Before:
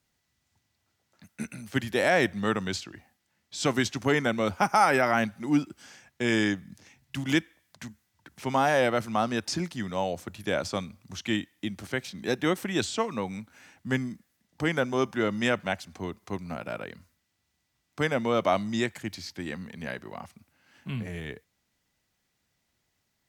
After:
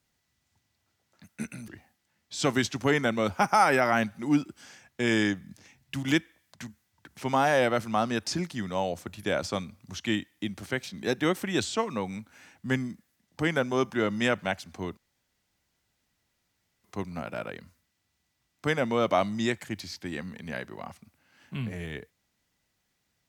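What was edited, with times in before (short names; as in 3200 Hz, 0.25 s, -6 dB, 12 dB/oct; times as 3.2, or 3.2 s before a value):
1.68–2.89 cut
16.18 insert room tone 1.87 s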